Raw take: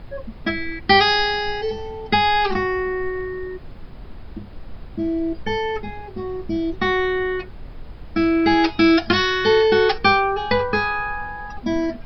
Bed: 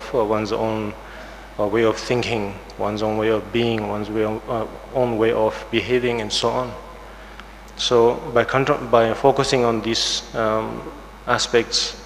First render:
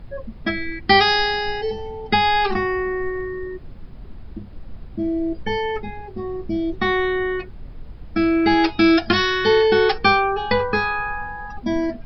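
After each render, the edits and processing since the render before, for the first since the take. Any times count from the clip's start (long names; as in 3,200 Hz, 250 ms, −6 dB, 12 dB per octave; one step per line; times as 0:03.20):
broadband denoise 6 dB, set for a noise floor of −38 dBFS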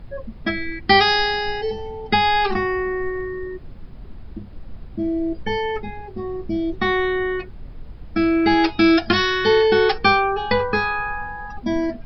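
no processing that can be heard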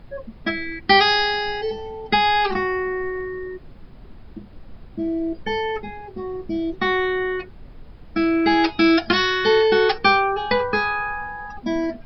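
low-shelf EQ 190 Hz −5.5 dB
mains-hum notches 50/100 Hz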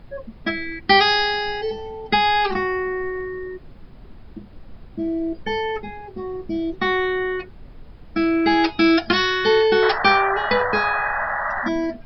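0:09.82–0:11.69: sound drawn into the spectrogram noise 560–2,000 Hz −25 dBFS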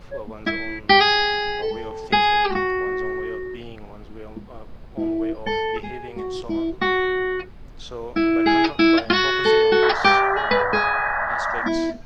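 mix in bed −18.5 dB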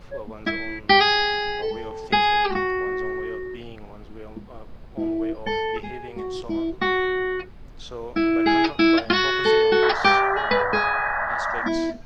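level −1.5 dB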